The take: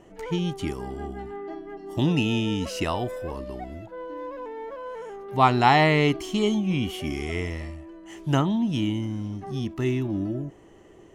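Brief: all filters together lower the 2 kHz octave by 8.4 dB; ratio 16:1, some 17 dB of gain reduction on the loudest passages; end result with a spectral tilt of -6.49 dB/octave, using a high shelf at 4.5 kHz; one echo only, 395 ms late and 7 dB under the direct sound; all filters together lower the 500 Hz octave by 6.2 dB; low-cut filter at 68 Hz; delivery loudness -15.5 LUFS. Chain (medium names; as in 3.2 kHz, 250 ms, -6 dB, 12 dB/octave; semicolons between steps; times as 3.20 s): high-pass 68 Hz; peaking EQ 500 Hz -8 dB; peaking EQ 2 kHz -8 dB; treble shelf 4.5 kHz -8.5 dB; compression 16:1, threshold -33 dBFS; delay 395 ms -7 dB; trim +23 dB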